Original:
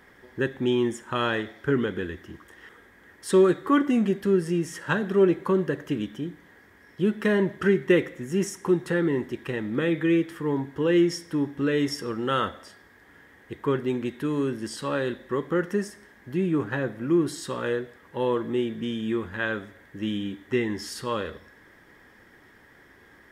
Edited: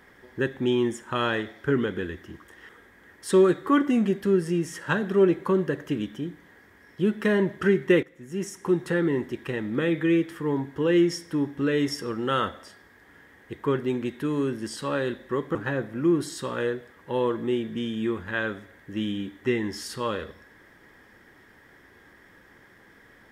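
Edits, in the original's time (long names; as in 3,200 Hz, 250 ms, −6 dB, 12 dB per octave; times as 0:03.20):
0:08.03–0:08.81: fade in, from −17 dB
0:15.55–0:16.61: remove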